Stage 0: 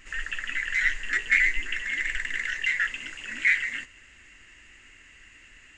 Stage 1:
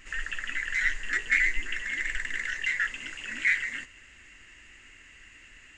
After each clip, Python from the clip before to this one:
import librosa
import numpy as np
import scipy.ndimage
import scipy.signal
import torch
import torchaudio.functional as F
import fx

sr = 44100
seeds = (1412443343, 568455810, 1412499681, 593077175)

y = fx.dynamic_eq(x, sr, hz=2600.0, q=1.3, threshold_db=-35.0, ratio=4.0, max_db=-4)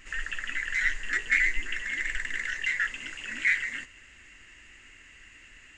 y = x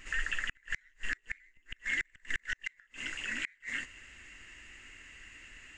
y = fx.gate_flip(x, sr, shuts_db=-19.0, range_db=-37)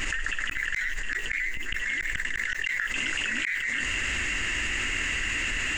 y = fx.env_flatten(x, sr, amount_pct=100)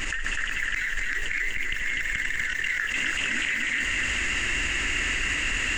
y = fx.echo_feedback(x, sr, ms=248, feedback_pct=43, wet_db=-3.0)